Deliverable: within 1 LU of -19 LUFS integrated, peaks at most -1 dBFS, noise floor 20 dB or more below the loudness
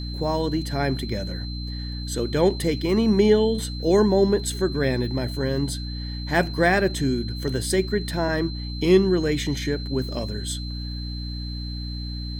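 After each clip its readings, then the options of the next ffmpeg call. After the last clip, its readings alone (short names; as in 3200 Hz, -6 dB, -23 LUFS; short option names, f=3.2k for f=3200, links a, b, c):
hum 60 Hz; harmonics up to 300 Hz; hum level -29 dBFS; steady tone 4100 Hz; tone level -37 dBFS; loudness -24.0 LUFS; peak -6.0 dBFS; loudness target -19.0 LUFS
-> -af "bandreject=f=60:t=h:w=6,bandreject=f=120:t=h:w=6,bandreject=f=180:t=h:w=6,bandreject=f=240:t=h:w=6,bandreject=f=300:t=h:w=6"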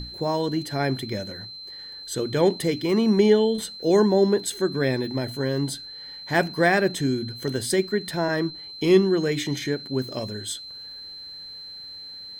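hum none; steady tone 4100 Hz; tone level -37 dBFS
-> -af "bandreject=f=4.1k:w=30"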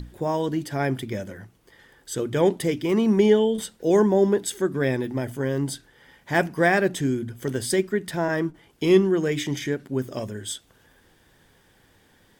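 steady tone none; loudness -24.0 LUFS; peak -6.5 dBFS; loudness target -19.0 LUFS
-> -af "volume=5dB"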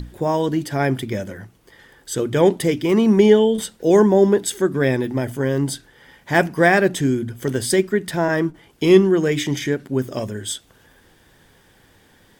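loudness -19.0 LUFS; peak -1.5 dBFS; noise floor -55 dBFS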